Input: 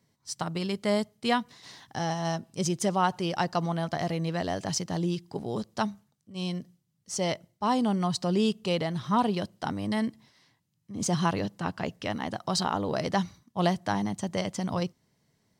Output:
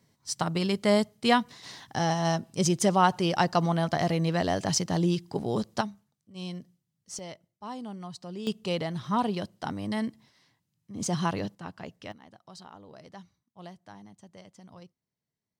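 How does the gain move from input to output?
+3.5 dB
from 5.81 s -5 dB
from 7.19 s -13 dB
from 8.47 s -2 dB
from 11.55 s -9 dB
from 12.12 s -20 dB

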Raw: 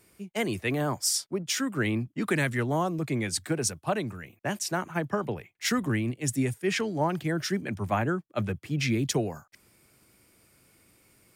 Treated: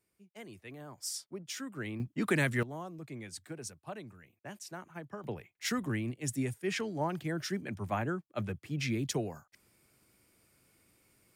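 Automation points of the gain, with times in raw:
-19.5 dB
from 0.98 s -12 dB
from 2 s -2.5 dB
from 2.63 s -15 dB
from 5.24 s -6.5 dB

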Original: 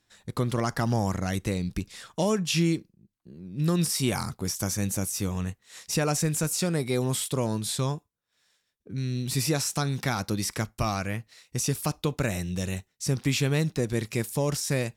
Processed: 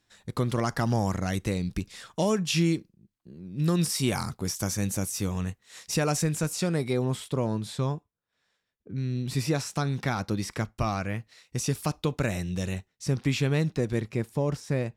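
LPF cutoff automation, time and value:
LPF 6 dB/oct
10000 Hz
from 6.24 s 4700 Hz
from 6.93 s 1800 Hz
from 9.27 s 2900 Hz
from 11.16 s 5500 Hz
from 12.73 s 3300 Hz
from 14 s 1200 Hz

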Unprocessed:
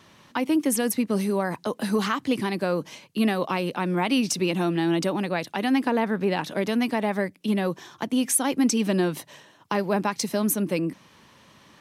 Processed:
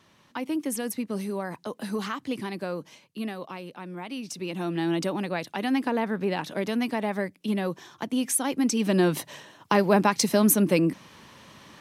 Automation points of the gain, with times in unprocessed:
2.63 s -6.5 dB
3.69 s -13 dB
4.2 s -13 dB
4.82 s -3 dB
8.71 s -3 dB
9.16 s +4 dB

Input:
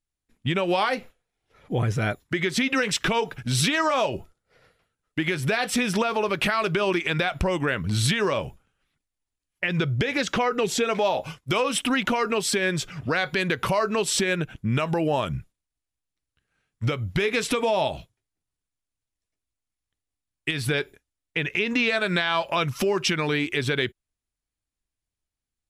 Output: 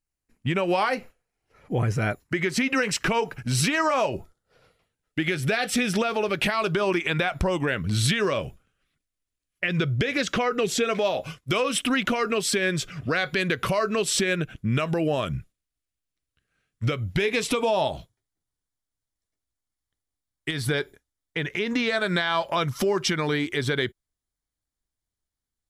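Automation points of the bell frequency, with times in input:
bell -12 dB 0.21 oct
4.05 s 3500 Hz
5.21 s 1000 Hz
6.37 s 1000 Hz
7.14 s 5800 Hz
7.81 s 880 Hz
16.96 s 880 Hz
17.91 s 2600 Hz

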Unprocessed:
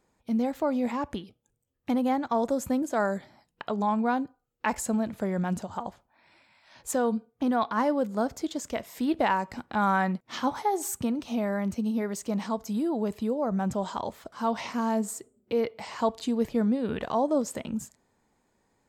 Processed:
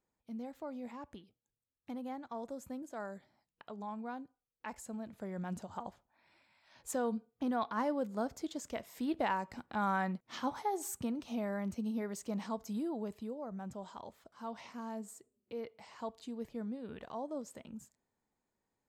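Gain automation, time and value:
4.89 s -16.5 dB
5.78 s -8.5 dB
12.77 s -8.5 dB
13.5 s -15.5 dB

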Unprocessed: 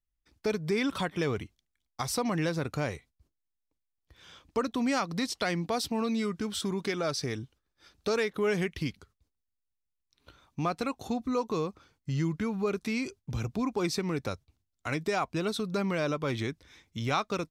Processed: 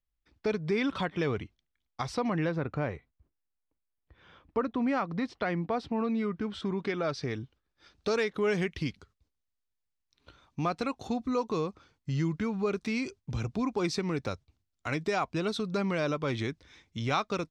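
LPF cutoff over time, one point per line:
2.03 s 4000 Hz
2.63 s 2000 Hz
6.12 s 2000 Hz
7.33 s 3600 Hz
8.16 s 6600 Hz

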